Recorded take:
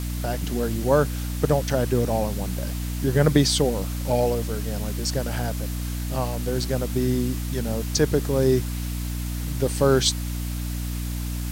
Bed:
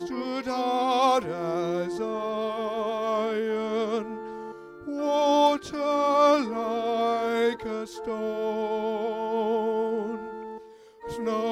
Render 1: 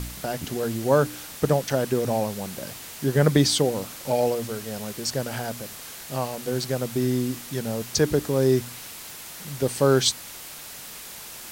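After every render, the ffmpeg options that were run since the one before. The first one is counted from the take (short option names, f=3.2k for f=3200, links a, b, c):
-af "bandreject=f=60:t=h:w=4,bandreject=f=120:t=h:w=4,bandreject=f=180:t=h:w=4,bandreject=f=240:t=h:w=4,bandreject=f=300:t=h:w=4"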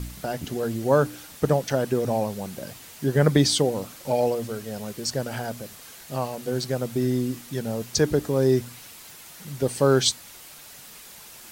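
-af "afftdn=nr=6:nf=-40"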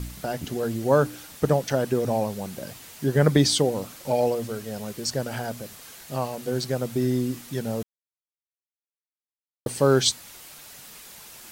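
-filter_complex "[0:a]asplit=3[a][b][c];[a]atrim=end=7.83,asetpts=PTS-STARTPTS,afade=t=out:st=7.826:d=0.004:c=hsin[d];[b]atrim=start=7.83:end=9.66,asetpts=PTS-STARTPTS,volume=0[e];[c]atrim=start=9.66,asetpts=PTS-STARTPTS,afade=t=in:d=0.004:c=hsin[f];[d][e][f]concat=n=3:v=0:a=1"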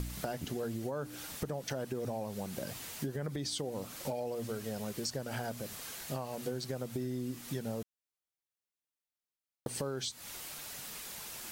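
-af "alimiter=limit=-17dB:level=0:latency=1:release=135,acompressor=threshold=-35dB:ratio=5"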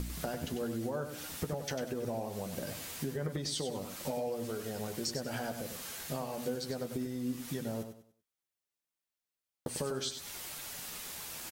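-filter_complex "[0:a]asplit=2[a][b];[b]adelay=12,volume=-8dB[c];[a][c]amix=inputs=2:normalize=0,asplit=2[d][e];[e]aecho=0:1:97|194|291|388:0.376|0.113|0.0338|0.0101[f];[d][f]amix=inputs=2:normalize=0"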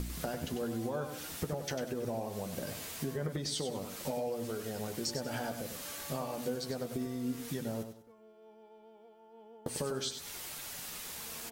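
-filter_complex "[1:a]volume=-29dB[a];[0:a][a]amix=inputs=2:normalize=0"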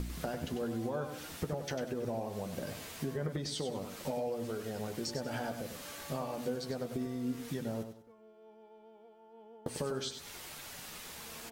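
-af "highshelf=f=5.5k:g=-7"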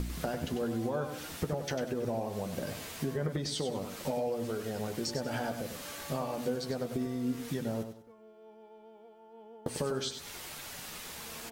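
-af "volume=3dB"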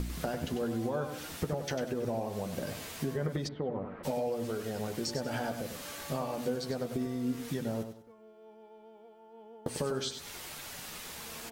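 -filter_complex "[0:a]asplit=3[a][b][c];[a]afade=t=out:st=3.47:d=0.02[d];[b]lowpass=f=1.8k:w=0.5412,lowpass=f=1.8k:w=1.3066,afade=t=in:st=3.47:d=0.02,afade=t=out:st=4.03:d=0.02[e];[c]afade=t=in:st=4.03:d=0.02[f];[d][e][f]amix=inputs=3:normalize=0"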